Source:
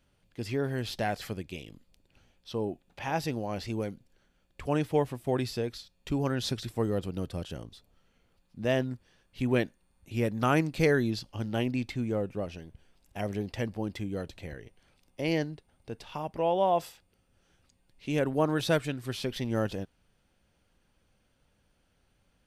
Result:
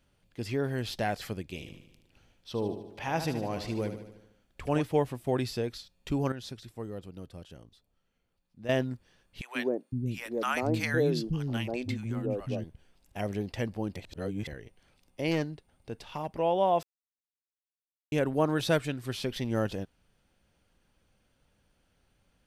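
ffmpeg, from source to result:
-filter_complex "[0:a]asettb=1/sr,asplit=3[a][b][c];[a]atrim=end=1.424[d];[b]atrim=start=1.42:end=4.83,asetpts=PTS-STARTPTS,afade=t=in:d=0.004:c=qsin,afade=t=out:st=3.406:d=0.004:c=qsin,aecho=1:1:75|150|225|300|375|450|525:0.335|0.191|0.109|0.062|0.0354|0.0202|0.0115,atrim=end_sample=150381[e];[c]atrim=start=4.826[f];[d][e]acrossfade=d=0.004:c1=hsin:c2=qsin[g];[g][f]acrossfade=d=0.004:c1=qsin:c2=hsin,asettb=1/sr,asplit=3[h][i][j];[h]atrim=end=9.414[k];[i]atrim=start=9.41:end=12.64,asetpts=PTS-STARTPTS,afade=t=in:d=0.004:c=qsin,afade=t=out:st=3.226:d=0.004:c=qsin,acrossover=split=250|820[l][m][n];[m]adelay=140[o];[l]adelay=510[p];[p][o][n]amix=inputs=3:normalize=0,atrim=end_sample=142443[q];[j]atrim=start=12.636[r];[k][q]acrossfade=d=0.004:c1=hsin:c2=qsin[s];[s][r]acrossfade=d=0.004:c1=qsin:c2=hsin,asettb=1/sr,asplit=3[t][u][v];[t]atrim=end=15.314[w];[u]atrim=start=15.31:end=16.32,asetpts=PTS-STARTPTS,afade=t=in:d=0.004:c=qsin,afade=t=out:st=1.006:d=0.004:c=qsin,aeval=exprs='clip(val(0),-1,0.0447)':c=same[x];[v]atrim=start=16.316[y];[w][x]acrossfade=d=0.004:c1=hsin:c2=qsin[z];[z][y]acrossfade=d=0.004:c1=qsin:c2=hsin,asplit=7[aa][ab][ac][ad][ae][af][ag];[aa]atrim=end=6.322[ah];[ab]atrim=start=6.318:end=8.692,asetpts=PTS-STARTPTS,volume=-10dB[ai];[ac]atrim=start=8.688:end=13.962[aj];[ad]atrim=start=13.958:end=14.472,asetpts=PTS-STARTPTS,areverse[ak];[ae]atrim=start=14.468:end=16.83,asetpts=PTS-STARTPTS,afade=t=out:st=2.358:d=0.004:c=hsin[al];[af]atrim=start=16.83:end=18.12,asetpts=PTS-STARTPTS,volume=0[am];[ag]atrim=start=18.12,asetpts=PTS-STARTPTS,afade=t=in:d=0.004:c=hsin[an];[ah][ai]acrossfade=d=0.004:c1=hsin:c2=hsin[ao];[ao][aj]acrossfade=d=0.004:c1=hsin:c2=hsin[ap];[ap][ak]acrossfade=d=0.004:c1=hsin:c2=hsin[aq];[al][am][an]concat=n=3:v=0:a=1[ar];[aq][ar]acrossfade=d=0.004:c1=hsin:c2=hsin"

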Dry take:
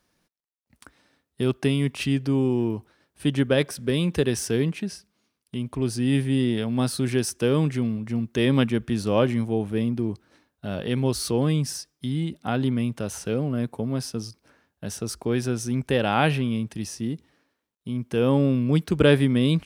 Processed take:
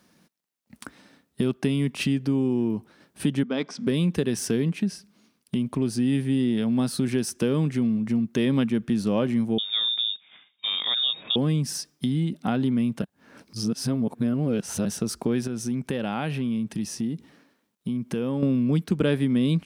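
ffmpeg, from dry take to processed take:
-filter_complex "[0:a]asettb=1/sr,asplit=3[a][b][c];[a]atrim=end=3.434[d];[b]atrim=start=3.43:end=3.87,asetpts=PTS-STARTPTS,afade=t=in:d=0.004:c=qsin,afade=t=out:st=0.436:d=0.004:c=qsin,highpass=f=220:w=0.5412,highpass=f=220:w=1.3066,equalizer=f=360:t=q:w=4:g=-10,equalizer=f=550:t=q:w=4:g=-10,equalizer=f=1.7k:t=q:w=4:g=-9,equalizer=f=2.8k:t=q:w=4:g=-7,equalizer=f=4k:t=q:w=4:g=-6,lowpass=f=5.6k:w=0.5412,lowpass=f=5.6k:w=1.3066[e];[c]atrim=start=3.866[f];[d][e]acrossfade=d=0.004:c1=hsin:c2=qsin[g];[g][f]acrossfade=d=0.004:c1=qsin:c2=hsin,asettb=1/sr,asplit=3[h][i][j];[h]atrim=end=9.584[k];[i]atrim=start=9.58:end=11.36,asetpts=PTS-STARTPTS,afade=t=in:d=0.004:c=qsin,afade=t=out:st=1.776:d=0.004:c=qsin,lowpass=f=3.2k:t=q:w=0.5098,lowpass=f=3.2k:t=q:w=0.6013,lowpass=f=3.2k:t=q:w=0.9,lowpass=f=3.2k:t=q:w=2.563,afreqshift=-3800[l];[j]atrim=start=11.356[m];[k][l]acrossfade=d=0.004:c1=hsin:c2=qsin[n];[n][m]acrossfade=d=0.004:c1=qsin:c2=hsin,asettb=1/sr,asplit=3[o][p][q];[o]atrim=end=15.474[r];[p]atrim=start=15.47:end=18.43,asetpts=PTS-STARTPTS,afade=t=in:d=0.004:c=qsin,afade=t=out:st=2.956:d=0.004:c=qsin,acompressor=threshold=-45dB:ratio=1.5:attack=3.2:release=140:knee=1:detection=peak[s];[q]atrim=start=18.426[t];[r][s]acrossfade=d=0.004:c1=hsin:c2=qsin[u];[u][t]acrossfade=d=0.004:c1=qsin:c2=hsin,asplit=3[v][w][x];[v]atrim=end=13.022[y];[w]atrim=start=13.018:end=14.852,asetpts=PTS-STARTPTS,areverse[z];[x]atrim=start=14.848[aa];[y][z]acrossfade=d=0.004:c1=hsin:c2=hsin[ab];[ab][aa]acrossfade=d=0.004:c1=hsin:c2=hsin,highpass=f=140:p=1,equalizer=f=200:t=o:w=0.99:g=9.5,acompressor=threshold=-34dB:ratio=2.5,volume=7.5dB"

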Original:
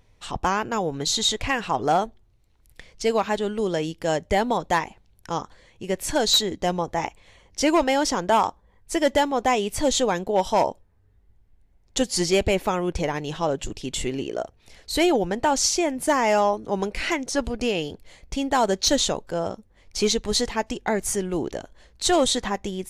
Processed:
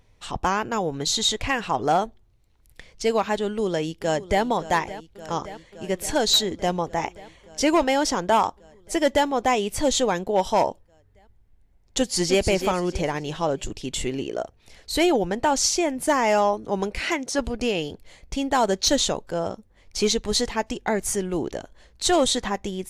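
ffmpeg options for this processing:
-filter_complex "[0:a]asplit=2[a][b];[b]afade=t=in:st=3.44:d=0.01,afade=t=out:st=4.43:d=0.01,aecho=0:1:570|1140|1710|2280|2850|3420|3990|4560|5130|5700|6270|6840:0.16788|0.134304|0.107443|0.0859548|0.0687638|0.0550111|0.0440088|0.0352071|0.0281657|0.0225325|0.018026|0.0144208[c];[a][c]amix=inputs=2:normalize=0,asplit=2[d][e];[e]afade=t=in:st=11.98:d=0.01,afade=t=out:st=12.42:d=0.01,aecho=0:1:310|620|930|1240:0.375837|0.131543|0.0460401|0.016114[f];[d][f]amix=inputs=2:normalize=0,asettb=1/sr,asplit=3[g][h][i];[g]atrim=end=16.984[j];[h]atrim=start=16.98:end=17.39,asetpts=PTS-STARTPTS,afade=t=in:d=0.004:c=qsin,afade=t=out:st=0.406:d=0.004:c=qsin,highpass=f=120:p=1[k];[i]atrim=start=17.386[l];[j][k]acrossfade=d=0.004:c1=hsin:c2=qsin[m];[m][l]acrossfade=d=0.004:c1=qsin:c2=hsin"

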